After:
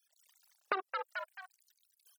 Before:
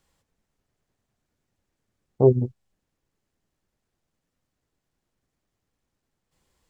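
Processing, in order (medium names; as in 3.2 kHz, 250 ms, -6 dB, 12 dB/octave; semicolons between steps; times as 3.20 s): companding laws mixed up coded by A; level rider gain up to 15 dB; tilt shelf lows -6.5 dB, about 870 Hz; peak limiter -15.5 dBFS, peak gain reduction 11.5 dB; hard clipper -23 dBFS, distortion -11 dB; high-pass 180 Hz 12 dB/octave; loudest bins only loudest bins 32; wide varispeed 3.07×; frequency-shifting echo 218 ms, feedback 32%, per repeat +120 Hz, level -10.5 dB; compression 8:1, threshold -43 dBFS, peak gain reduction 17 dB; trim +11 dB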